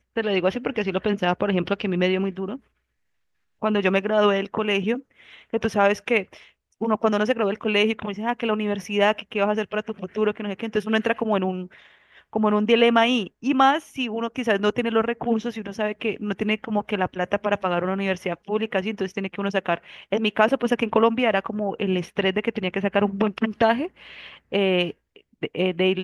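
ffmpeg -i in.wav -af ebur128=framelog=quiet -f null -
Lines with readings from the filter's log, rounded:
Integrated loudness:
  I:         -23.4 LUFS
  Threshold: -33.7 LUFS
Loudness range:
  LRA:         3.8 LU
  Threshold: -43.7 LUFS
  LRA low:   -25.4 LUFS
  LRA high:  -21.6 LUFS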